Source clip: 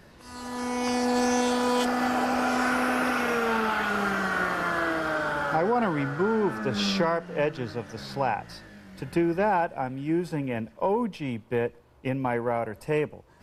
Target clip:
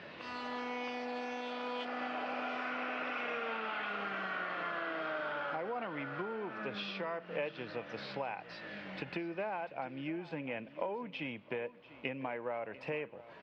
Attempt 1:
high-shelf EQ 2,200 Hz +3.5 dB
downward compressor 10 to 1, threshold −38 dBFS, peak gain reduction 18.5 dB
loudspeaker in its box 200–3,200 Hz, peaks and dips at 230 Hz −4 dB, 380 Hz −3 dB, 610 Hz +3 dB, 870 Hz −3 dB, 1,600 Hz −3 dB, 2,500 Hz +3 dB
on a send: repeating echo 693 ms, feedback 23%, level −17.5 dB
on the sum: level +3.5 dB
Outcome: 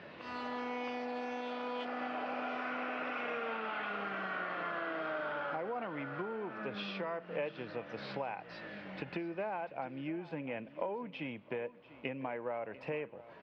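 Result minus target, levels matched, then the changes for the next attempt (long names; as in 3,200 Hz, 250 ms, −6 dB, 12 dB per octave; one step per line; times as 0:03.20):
4,000 Hz band −2.5 dB
change: high-shelf EQ 2,200 Hz +10 dB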